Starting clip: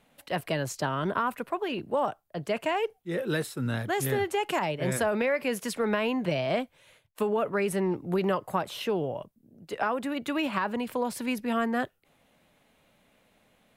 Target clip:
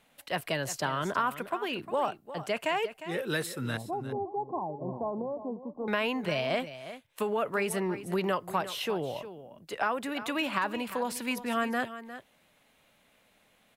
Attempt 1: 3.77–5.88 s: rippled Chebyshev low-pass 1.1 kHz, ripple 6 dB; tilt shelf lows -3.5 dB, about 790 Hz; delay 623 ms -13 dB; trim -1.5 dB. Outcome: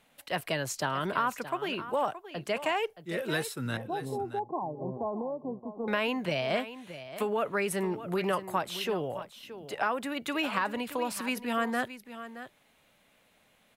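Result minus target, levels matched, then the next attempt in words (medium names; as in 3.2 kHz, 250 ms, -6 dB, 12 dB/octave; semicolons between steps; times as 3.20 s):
echo 268 ms late
3.77–5.88 s: rippled Chebyshev low-pass 1.1 kHz, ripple 6 dB; tilt shelf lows -3.5 dB, about 790 Hz; delay 355 ms -13 dB; trim -1.5 dB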